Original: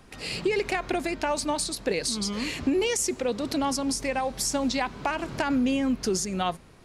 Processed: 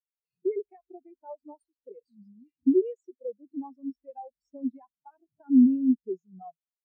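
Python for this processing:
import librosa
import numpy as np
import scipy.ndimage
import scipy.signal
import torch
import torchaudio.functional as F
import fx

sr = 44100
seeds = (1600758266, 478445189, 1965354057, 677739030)

y = fx.spectral_expand(x, sr, expansion=4.0)
y = y * librosa.db_to_amplitude(3.5)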